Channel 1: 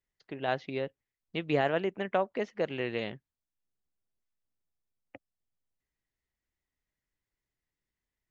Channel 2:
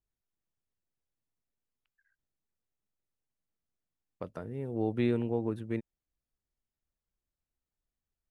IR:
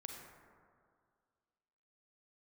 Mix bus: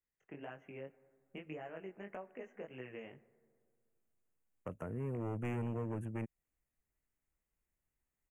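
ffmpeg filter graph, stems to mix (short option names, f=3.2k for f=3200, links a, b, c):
-filter_complex "[0:a]acompressor=threshold=-38dB:ratio=5,flanger=delay=16:depth=6.2:speed=1.8,volume=-4.5dB,asplit=2[a][b];[b]volume=-11dB[c];[1:a]adelay=450,volume=1dB[d];[2:a]atrim=start_sample=2205[e];[c][e]afir=irnorm=-1:irlink=0[f];[a][d][f]amix=inputs=3:normalize=0,acrossover=split=180|3000[g][h][i];[h]acompressor=threshold=-41dB:ratio=2[j];[g][j][i]amix=inputs=3:normalize=0,asoftclip=type=hard:threshold=-34.5dB,asuperstop=centerf=4300:order=8:qfactor=1.2"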